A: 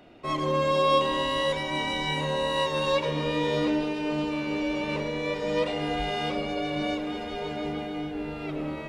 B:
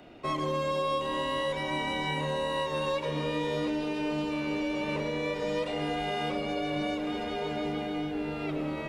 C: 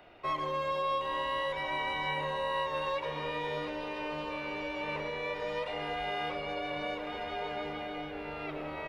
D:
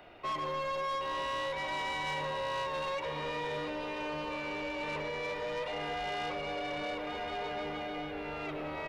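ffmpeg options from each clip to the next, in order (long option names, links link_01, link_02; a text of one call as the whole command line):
ffmpeg -i in.wav -filter_complex "[0:a]acrossover=split=87|2900|7900[link_01][link_02][link_03][link_04];[link_01]acompressor=threshold=-54dB:ratio=4[link_05];[link_02]acompressor=threshold=-30dB:ratio=4[link_06];[link_03]acompressor=threshold=-49dB:ratio=4[link_07];[link_04]acompressor=threshold=-59dB:ratio=4[link_08];[link_05][link_06][link_07][link_08]amix=inputs=4:normalize=0,volume=1.5dB" out.wav
ffmpeg -i in.wav -filter_complex "[0:a]equalizer=frequency=125:width_type=o:width=1:gain=-4,equalizer=frequency=250:width_type=o:width=1:gain=-11,equalizer=frequency=1000:width_type=o:width=1:gain=3,equalizer=frequency=2000:width_type=o:width=1:gain=3,equalizer=frequency=8000:width_type=o:width=1:gain=-11,asplit=2[link_01][link_02];[link_02]adelay=1399,volume=-11dB,highshelf=frequency=4000:gain=-31.5[link_03];[link_01][link_03]amix=inputs=2:normalize=0,volume=-3dB" out.wav
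ffmpeg -i in.wav -af "asoftclip=type=tanh:threshold=-33dB,volume=2dB" out.wav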